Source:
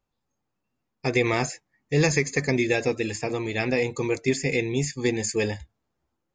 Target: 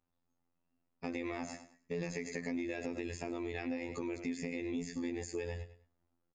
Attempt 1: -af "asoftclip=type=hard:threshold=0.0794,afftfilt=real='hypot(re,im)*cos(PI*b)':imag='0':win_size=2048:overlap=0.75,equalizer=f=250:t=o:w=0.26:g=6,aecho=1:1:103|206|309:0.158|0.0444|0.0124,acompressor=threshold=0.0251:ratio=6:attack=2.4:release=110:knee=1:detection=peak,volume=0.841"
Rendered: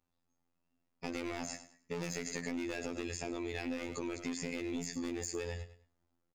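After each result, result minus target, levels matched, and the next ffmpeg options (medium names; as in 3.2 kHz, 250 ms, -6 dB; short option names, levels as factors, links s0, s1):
hard clipper: distortion +30 dB; 8 kHz band +7.5 dB
-af "asoftclip=type=hard:threshold=0.316,afftfilt=real='hypot(re,im)*cos(PI*b)':imag='0':win_size=2048:overlap=0.75,equalizer=f=250:t=o:w=0.26:g=6,aecho=1:1:103|206|309:0.158|0.0444|0.0124,acompressor=threshold=0.0251:ratio=6:attack=2.4:release=110:knee=1:detection=peak,volume=0.841"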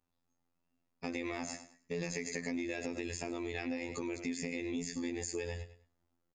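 8 kHz band +6.5 dB
-af "asoftclip=type=hard:threshold=0.316,afftfilt=real='hypot(re,im)*cos(PI*b)':imag='0':win_size=2048:overlap=0.75,equalizer=f=250:t=o:w=0.26:g=6,aecho=1:1:103|206|309:0.158|0.0444|0.0124,acompressor=threshold=0.0251:ratio=6:attack=2.4:release=110:knee=1:detection=peak,highshelf=f=3500:g=-9,volume=0.841"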